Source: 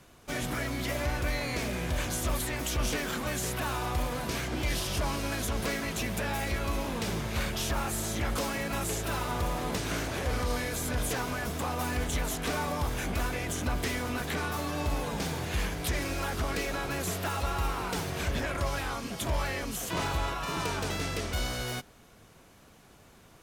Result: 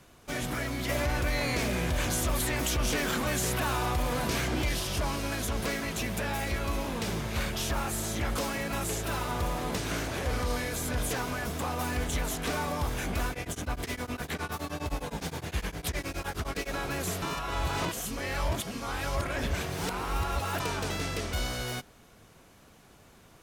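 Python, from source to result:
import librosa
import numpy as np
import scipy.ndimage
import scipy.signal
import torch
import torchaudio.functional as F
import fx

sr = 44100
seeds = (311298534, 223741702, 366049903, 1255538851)

y = fx.env_flatten(x, sr, amount_pct=50, at=(0.89, 4.69))
y = fx.tremolo_abs(y, sr, hz=9.7, at=(13.31, 16.72), fade=0.02)
y = fx.edit(y, sr, fx.reverse_span(start_s=17.22, length_s=3.38), tone=tone)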